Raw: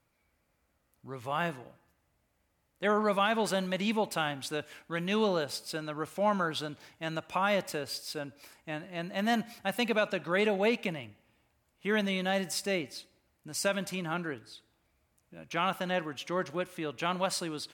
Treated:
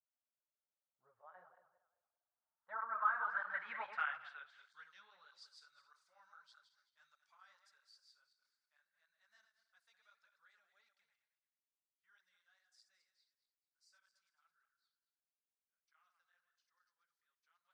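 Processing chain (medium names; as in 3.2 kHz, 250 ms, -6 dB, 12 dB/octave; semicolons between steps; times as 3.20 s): backward echo that repeats 104 ms, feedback 53%, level -8 dB; Doppler pass-by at 3.85 s, 17 m/s, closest 3.8 m; low-pass that closes with the level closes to 2.4 kHz, closed at -38 dBFS; resonant high shelf 2 kHz -10 dB, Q 3; band-pass sweep 540 Hz -> 4.6 kHz, 1.99–4.93 s; amplifier tone stack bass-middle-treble 10-0-10; cancelling through-zero flanger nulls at 1.6 Hz, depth 7.6 ms; trim +13.5 dB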